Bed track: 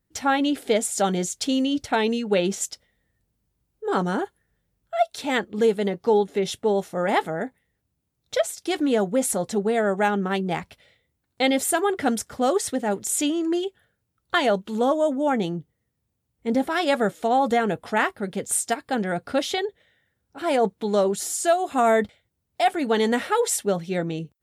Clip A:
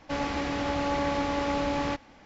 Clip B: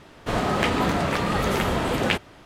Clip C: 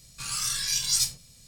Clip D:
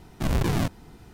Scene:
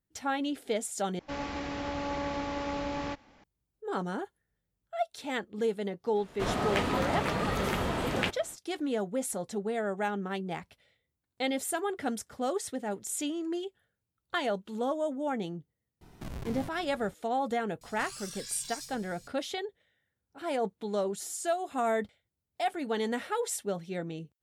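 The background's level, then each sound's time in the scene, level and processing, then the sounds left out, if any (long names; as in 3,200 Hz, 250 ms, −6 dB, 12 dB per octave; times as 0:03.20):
bed track −10 dB
0:01.19: overwrite with A −6 dB
0:06.13: mix in B −7 dB, fades 0.05 s
0:16.01: mix in D −6 dB + downward compressor, threshold −32 dBFS
0:17.81: mix in C −3 dB + downward compressor 4 to 1, threshold −40 dBFS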